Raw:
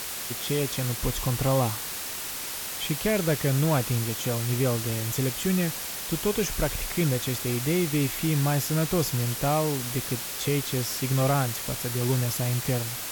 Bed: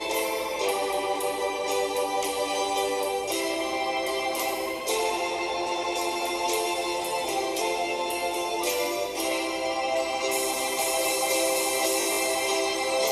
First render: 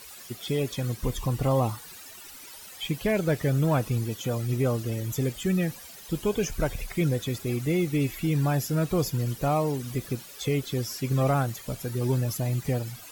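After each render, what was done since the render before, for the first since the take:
broadband denoise 15 dB, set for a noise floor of −34 dBFS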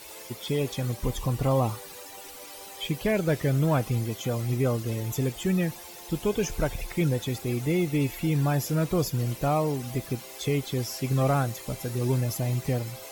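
mix in bed −21 dB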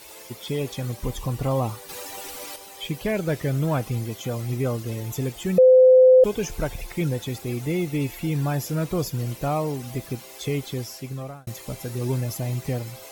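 0:01.89–0:02.56: clip gain +7 dB
0:05.58–0:06.24: beep over 513 Hz −9 dBFS
0:10.68–0:11.47: fade out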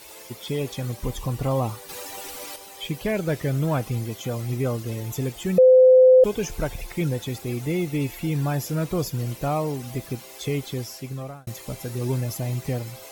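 no processing that can be heard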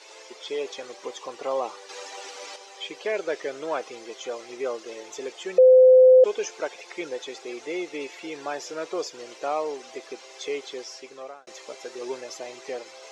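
elliptic band-pass filter 400–6,400 Hz, stop band 60 dB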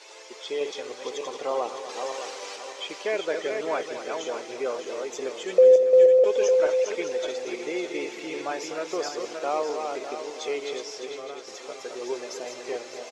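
feedback delay that plays each chunk backwards 303 ms, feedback 57%, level −5 dB
slap from a distant wall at 42 metres, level −12 dB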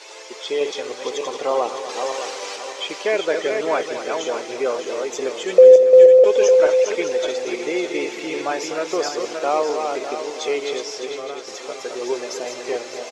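level +7 dB

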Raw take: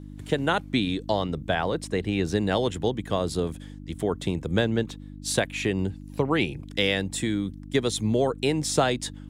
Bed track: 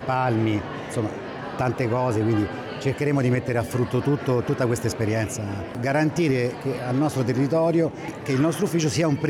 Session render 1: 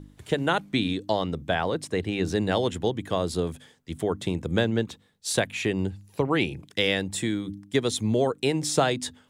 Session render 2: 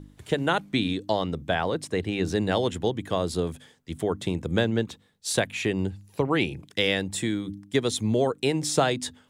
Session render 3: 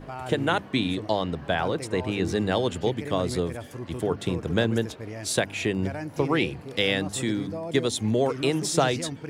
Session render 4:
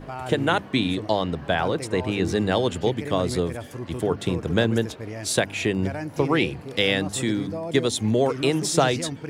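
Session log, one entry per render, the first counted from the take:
hum removal 50 Hz, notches 6
no processing that can be heard
mix in bed track −13.5 dB
level +2.5 dB

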